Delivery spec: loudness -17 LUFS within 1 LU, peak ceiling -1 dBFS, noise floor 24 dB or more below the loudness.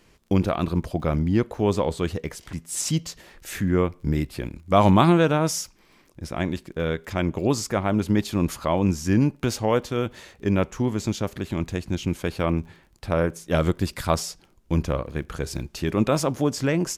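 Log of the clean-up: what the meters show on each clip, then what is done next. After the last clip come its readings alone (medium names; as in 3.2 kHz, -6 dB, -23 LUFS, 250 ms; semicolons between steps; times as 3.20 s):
tick rate 26 per s; loudness -24.5 LUFS; peak level -4.5 dBFS; loudness target -17.0 LUFS
-> de-click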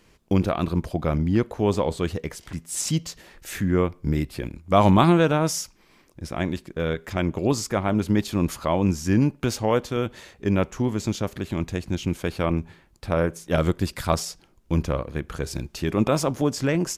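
tick rate 0 per s; loudness -24.5 LUFS; peak level -4.5 dBFS; loudness target -17.0 LUFS
-> trim +7.5 dB; peak limiter -1 dBFS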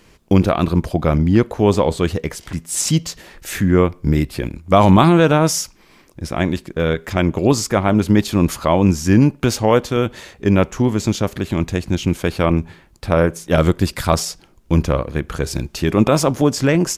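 loudness -17.5 LUFS; peak level -1.0 dBFS; noise floor -51 dBFS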